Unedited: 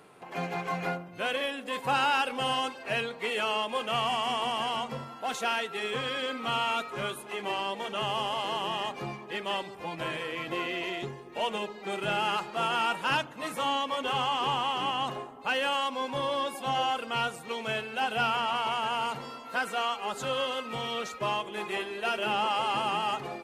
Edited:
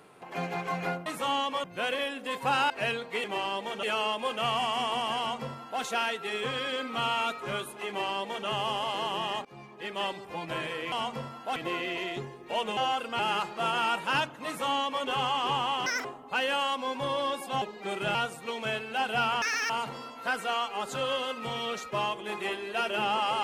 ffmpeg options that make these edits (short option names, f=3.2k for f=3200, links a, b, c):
-filter_complex "[0:a]asplit=17[a][b][c][d][e][f][g][h][i][j][k][l][m][n][o][p][q];[a]atrim=end=1.062[r];[b]atrim=start=13.428:end=14.012[s];[c]atrim=start=1.058:end=2.122[t];[d]atrim=start=2.788:end=3.332[u];[e]atrim=start=7.378:end=7.972[v];[f]atrim=start=3.328:end=8.95,asetpts=PTS-STARTPTS,afade=t=out:st=5.618:d=0.004:c=hsin:silence=0.0794328[w];[g]atrim=start=8.95:end=10.422,asetpts=PTS-STARTPTS,afade=t=in:d=0.58:silence=0.0794328[x];[h]atrim=start=4.678:end=5.322[y];[i]atrim=start=10.418:end=11.632[z];[j]atrim=start=16.748:end=17.172[aa];[k]atrim=start=12.158:end=14.834[ab];[l]atrim=start=14.83:end=15.18,asetpts=PTS-STARTPTS,asetrate=82467,aresample=44100,atrim=end_sample=8254,asetpts=PTS-STARTPTS[ac];[m]atrim=start=15.176:end=16.752[ad];[n]atrim=start=11.628:end=12.162[ae];[o]atrim=start=17.168:end=18.444[af];[p]atrim=start=18.44:end=18.98,asetpts=PTS-STARTPTS,asetrate=85113,aresample=44100[ag];[q]atrim=start=18.976[ah];[r][s]acrossfade=d=0.004:c1=hsin:c2=hsin[ai];[ai][t]acrossfade=d=0.004:c1=hsin:c2=hsin[aj];[aj][u]acrossfade=d=0.004:c1=hsin:c2=hsin[ak];[ak][v]acrossfade=d=0.004:c1=hsin:c2=hsin[al];[w][x]concat=n=2:v=0:a=1[am];[al][am]acrossfade=d=0.004:c1=hsin:c2=hsin[an];[an][y]acrossfade=d=0.004:c1=hsin:c2=hsin[ao];[ao][z]acrossfade=d=0.004:c1=hsin:c2=hsin[ap];[ap][aa]acrossfade=d=0.004:c1=hsin:c2=hsin[aq];[aq][ab]acrossfade=d=0.004:c1=hsin:c2=hsin[ar];[ar][ac]acrossfade=d=0.004:c1=hsin:c2=hsin[as];[as][ad]acrossfade=d=0.004:c1=hsin:c2=hsin[at];[at][ae]acrossfade=d=0.004:c1=hsin:c2=hsin[au];[au][af]acrossfade=d=0.004:c1=hsin:c2=hsin[av];[av][ag]acrossfade=d=0.004:c1=hsin:c2=hsin[aw];[aw][ah]acrossfade=d=0.004:c1=hsin:c2=hsin"